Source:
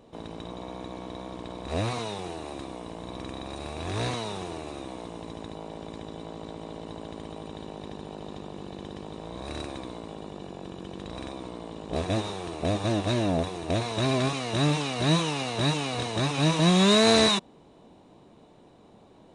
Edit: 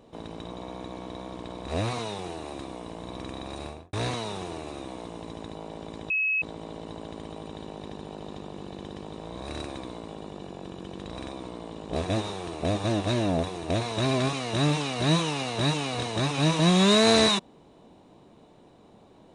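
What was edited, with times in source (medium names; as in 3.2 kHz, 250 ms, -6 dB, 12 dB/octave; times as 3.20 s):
3.61–3.93 s: studio fade out
6.10–6.42 s: bleep 2.57 kHz -22.5 dBFS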